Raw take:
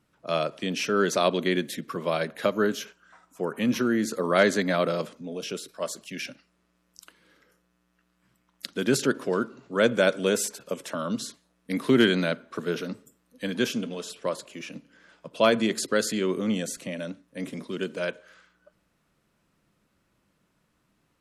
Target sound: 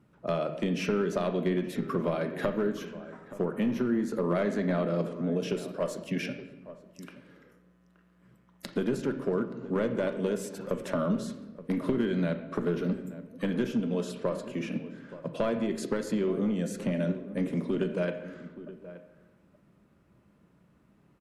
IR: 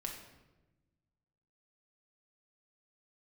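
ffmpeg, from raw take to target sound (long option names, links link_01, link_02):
-filter_complex "[0:a]highpass=59,tiltshelf=frequency=710:gain=4.5,acompressor=threshold=-30dB:ratio=8,aeval=exprs='clip(val(0),-1,0.0398)':channel_layout=same,asplit=2[link_01][link_02];[link_02]adelay=874.6,volume=-15dB,highshelf=frequency=4000:gain=-19.7[link_03];[link_01][link_03]amix=inputs=2:normalize=0,asplit=2[link_04][link_05];[1:a]atrim=start_sample=2205,lowpass=3000[link_06];[link_05][link_06]afir=irnorm=-1:irlink=0,volume=2dB[link_07];[link_04][link_07]amix=inputs=2:normalize=0,volume=-1dB"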